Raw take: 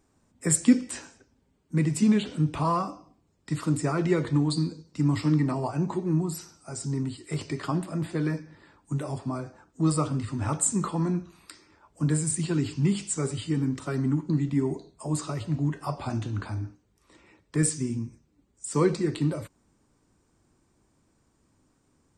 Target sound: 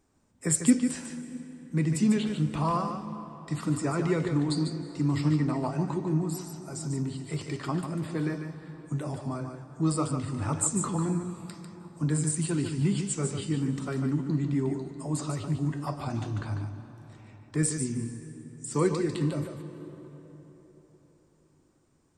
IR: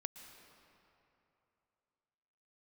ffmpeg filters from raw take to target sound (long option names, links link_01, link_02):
-filter_complex "[0:a]asplit=2[link_01][link_02];[1:a]atrim=start_sample=2205,asetrate=31311,aresample=44100,adelay=147[link_03];[link_02][link_03]afir=irnorm=-1:irlink=0,volume=-5dB[link_04];[link_01][link_04]amix=inputs=2:normalize=0,volume=-2.5dB"